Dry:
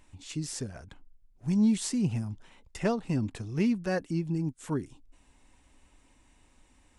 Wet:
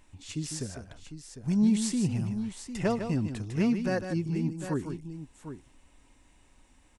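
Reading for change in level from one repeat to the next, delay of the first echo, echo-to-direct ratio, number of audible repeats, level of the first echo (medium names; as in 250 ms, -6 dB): no regular repeats, 152 ms, -6.5 dB, 2, -8.5 dB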